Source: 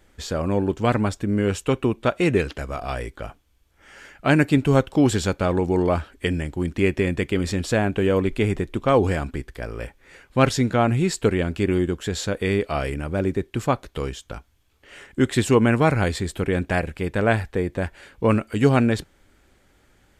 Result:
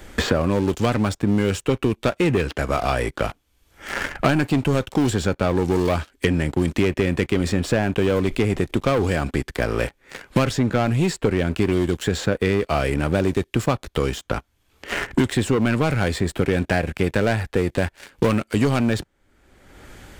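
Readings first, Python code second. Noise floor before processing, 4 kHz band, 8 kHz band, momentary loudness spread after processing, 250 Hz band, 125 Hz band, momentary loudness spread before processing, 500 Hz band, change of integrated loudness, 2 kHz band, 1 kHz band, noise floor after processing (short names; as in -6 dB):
-60 dBFS, +3.0 dB, +0.5 dB, 6 LU, +1.0 dB, +1.0 dB, 13 LU, +0.5 dB, +0.5 dB, +1.5 dB, 0.0 dB, -65 dBFS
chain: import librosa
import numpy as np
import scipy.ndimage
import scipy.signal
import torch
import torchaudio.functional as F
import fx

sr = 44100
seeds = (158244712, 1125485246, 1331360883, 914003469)

y = fx.leveller(x, sr, passes=3)
y = fx.band_squash(y, sr, depth_pct=100)
y = y * 10.0 ** (-8.5 / 20.0)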